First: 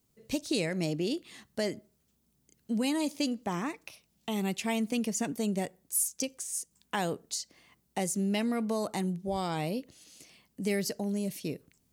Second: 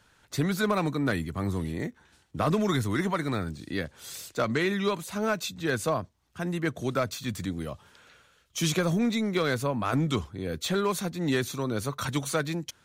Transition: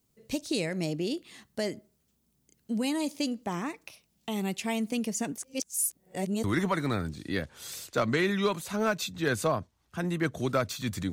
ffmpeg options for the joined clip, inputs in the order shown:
-filter_complex "[0:a]apad=whole_dur=11.12,atrim=end=11.12,asplit=2[s0][s1];[s0]atrim=end=5.382[s2];[s1]atrim=start=5.378:end=6.442,asetpts=PTS-STARTPTS,areverse[s3];[1:a]atrim=start=2.858:end=7.54[s4];[s2][s3]acrossfade=d=0.004:c1=hsin:c2=hsin[s5];[s5][s4]acrossfade=d=0.004:c1=hsin:c2=hsin"

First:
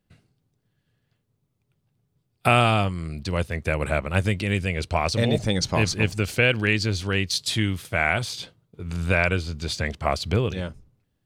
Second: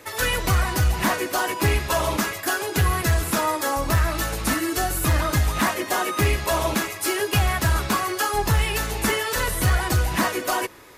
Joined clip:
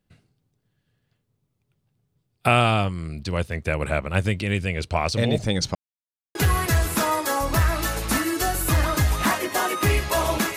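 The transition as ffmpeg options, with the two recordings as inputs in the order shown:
-filter_complex "[0:a]apad=whole_dur=10.56,atrim=end=10.56,asplit=2[s0][s1];[s0]atrim=end=5.75,asetpts=PTS-STARTPTS,afade=t=out:st=5.746:d=0.004:c=hsin[s2];[s1]atrim=start=5.75:end=6.35,asetpts=PTS-STARTPTS,volume=0[s3];[1:a]atrim=start=2.71:end=6.92,asetpts=PTS-STARTPTS,afade=t=in:d=0.004:c=hsin[s4];[s2][s3][s4]concat=n=3:v=0:a=1"

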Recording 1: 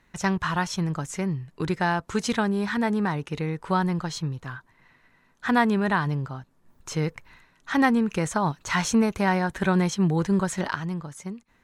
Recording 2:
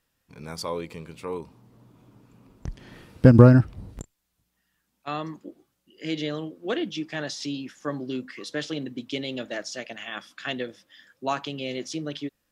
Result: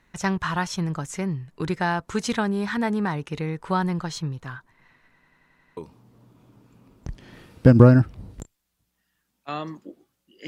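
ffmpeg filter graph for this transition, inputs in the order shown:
-filter_complex "[0:a]apad=whole_dur=10.47,atrim=end=10.47,asplit=7[s0][s1][s2][s3][s4][s5][s6];[s0]atrim=end=5.232[s7];[s1]atrim=start=5.138:end=5.232[s8];[s2]atrim=start=5.138:end=5.232[s9];[s3]atrim=start=5.138:end=5.232[s10];[s4]atrim=start=5.138:end=5.232[s11];[s5]atrim=start=5.138:end=5.232[s12];[s6]atrim=start=5.138:end=5.232[s13];[1:a]atrim=start=1.358:end=6.06[s14];[s7][s8]acrossfade=d=0.004:c1=hsin:c2=hsin[s15];[s15][s9]acrossfade=d=0.004:c1=hsin:c2=hsin[s16];[s16][s10]acrossfade=d=0.004:c1=hsin:c2=hsin[s17];[s17][s11]acrossfade=d=0.004:c1=hsin:c2=hsin[s18];[s18][s12]acrossfade=d=0.004:c1=hsin:c2=hsin[s19];[s19][s13]acrossfade=d=0.004:c1=hsin:c2=hsin[s20];[s20][s14]acrossfade=d=0.004:c1=hsin:c2=hsin"

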